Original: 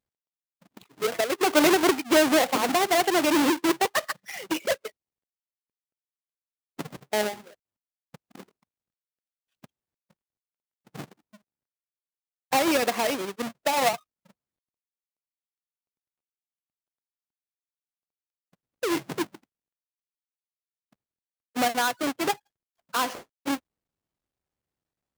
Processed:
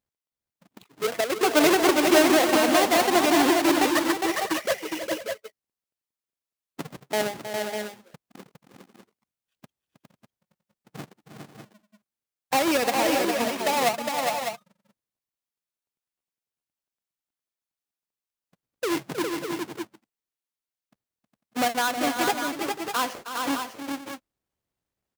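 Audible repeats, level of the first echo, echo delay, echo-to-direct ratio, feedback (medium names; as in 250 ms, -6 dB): 4, -10.5 dB, 316 ms, -1.5 dB, no regular repeats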